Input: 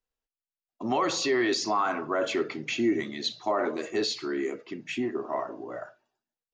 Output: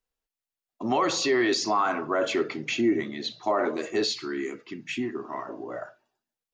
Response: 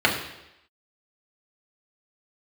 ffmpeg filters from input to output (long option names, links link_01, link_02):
-filter_complex "[0:a]asettb=1/sr,asplit=3[link_01][link_02][link_03];[link_01]atrim=end=2.814[link_04];[link_02]atrim=start=2.81:end=3.43,asetpts=PTS-STARTPTS,afade=type=in:duration=0.004:curve=qsin,afade=type=out:start_time=0.616:duration=0.004:curve=qsin,lowpass=frequency=2900:poles=1[link_05];[link_03]atrim=start=3.426[link_06];[link_04][link_05]acrossfade=duration=0.004:curve1=hsin:curve2=qsin[link_07];[link_07][link_06]acrossfade=duration=0.004:curve1=qsin:curve2=hsin,asettb=1/sr,asplit=3[link_08][link_09][link_10];[link_08]atrim=end=4.114[link_11];[link_09]atrim=start=4.11:end=5.47,asetpts=PTS-STARTPTS,afade=type=in:duration=0.004:curve=qsin,afade=type=out:start_time=1.356:duration=0.004:curve=qsin,equalizer=frequency=580:width_type=o:width=0.92:gain=-11.5[link_12];[link_10]atrim=start=5.466[link_13];[link_11][link_12]acrossfade=duration=0.004:curve1=hsin:curve2=qsin[link_14];[link_14][link_13]acrossfade=duration=0.004:curve1=qsin:curve2=hsin,volume=2dB"